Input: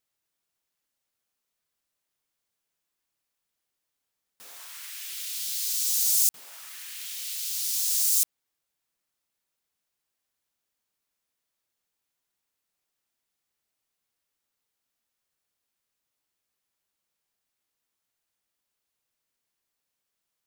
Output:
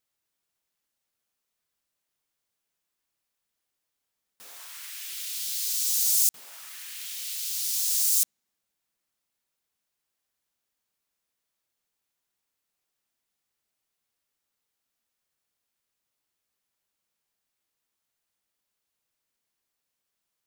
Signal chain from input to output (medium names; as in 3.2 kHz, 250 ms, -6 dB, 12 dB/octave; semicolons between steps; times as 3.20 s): on a send: band-pass filter 220 Hz, Q 1.9 + reverberation RT60 2.6 s, pre-delay 5 ms, DRR 34 dB